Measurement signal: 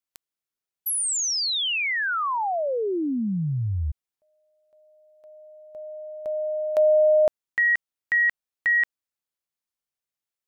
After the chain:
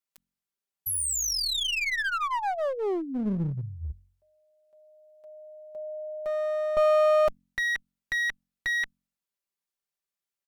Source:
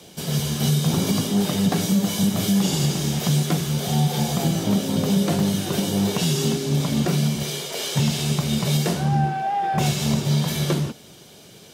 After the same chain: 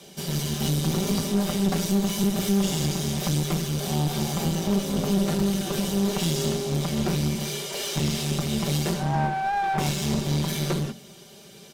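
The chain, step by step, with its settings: comb 5.1 ms, depth 66%; de-hum 45.26 Hz, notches 6; one-sided clip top -26 dBFS; gain -3 dB

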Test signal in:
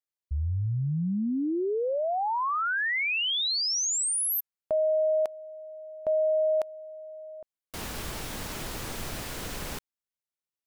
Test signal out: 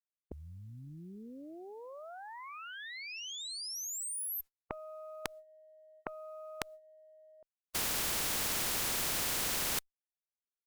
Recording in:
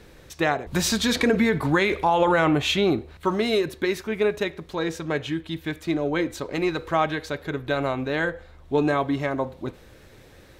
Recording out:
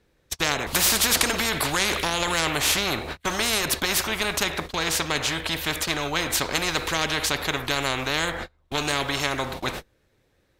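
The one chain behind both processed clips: gate -39 dBFS, range -38 dB; added harmonics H 2 -16 dB, 4 -37 dB, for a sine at -8.5 dBFS; spectral compressor 4:1; gain +5 dB

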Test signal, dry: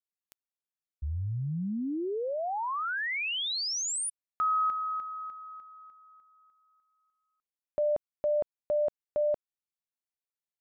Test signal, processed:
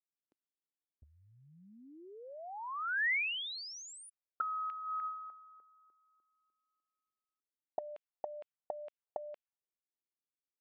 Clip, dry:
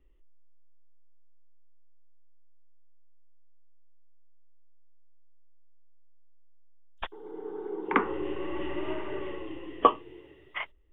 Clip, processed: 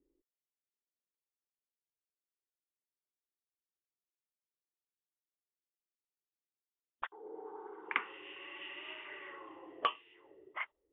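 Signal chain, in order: auto-wah 300–2700 Hz, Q 2.4, up, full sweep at -28.5 dBFS; gain +1.5 dB

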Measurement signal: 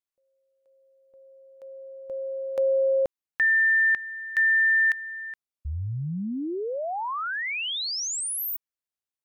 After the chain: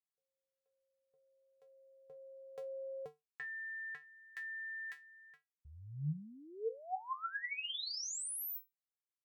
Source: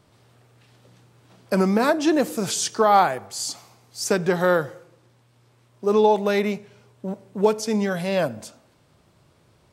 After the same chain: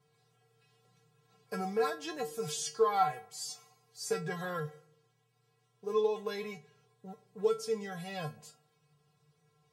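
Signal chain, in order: low shelf 180 Hz -4.5 dB; resonator 150 Hz, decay 0.18 s, harmonics odd, mix 100%

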